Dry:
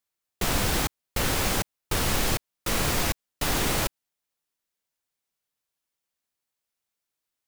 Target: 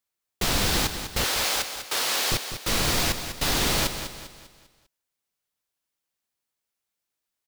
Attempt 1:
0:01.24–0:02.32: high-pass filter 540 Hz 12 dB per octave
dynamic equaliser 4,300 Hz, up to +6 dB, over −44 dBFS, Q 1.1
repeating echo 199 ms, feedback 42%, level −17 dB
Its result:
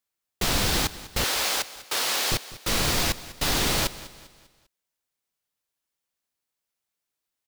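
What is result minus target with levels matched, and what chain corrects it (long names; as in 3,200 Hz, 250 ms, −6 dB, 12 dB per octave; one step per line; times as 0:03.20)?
echo-to-direct −7.5 dB
0:01.24–0:02.32: high-pass filter 540 Hz 12 dB per octave
dynamic equaliser 4,300 Hz, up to +6 dB, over −44 dBFS, Q 1.1
repeating echo 199 ms, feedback 42%, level −9.5 dB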